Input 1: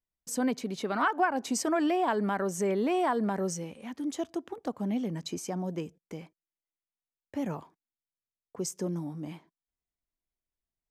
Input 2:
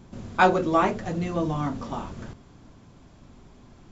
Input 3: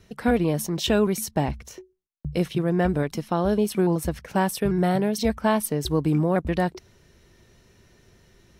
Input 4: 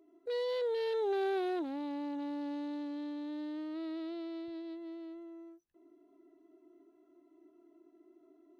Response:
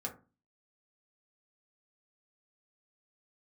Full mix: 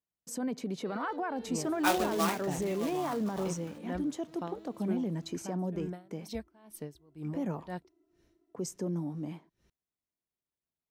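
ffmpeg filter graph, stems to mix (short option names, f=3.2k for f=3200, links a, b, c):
-filter_complex "[0:a]highpass=100,tiltshelf=f=970:g=3.5,alimiter=level_in=0.5dB:limit=-24dB:level=0:latency=1:release=23,volume=-0.5dB,volume=-2dB,asplit=2[a][b];[1:a]highpass=f=370:p=1,acrusher=bits=2:mode=log:mix=0:aa=0.000001,adynamicequalizer=threshold=0.0158:dfrequency=1900:dqfactor=0.7:tfrequency=1900:tqfactor=0.7:attack=5:release=100:ratio=0.375:range=3:mode=boostabove:tftype=highshelf,adelay=1450,volume=-10.5dB[c];[2:a]aeval=exprs='val(0)*pow(10,-27*(0.5-0.5*cos(2*PI*2.1*n/s))/20)':c=same,adelay=1100,volume=-14dB[d];[3:a]adelay=550,volume=-10dB[e];[b]apad=whole_len=403288[f];[e][f]sidechaincompress=threshold=-36dB:ratio=8:attack=16:release=459[g];[a][c][d][g]amix=inputs=4:normalize=0"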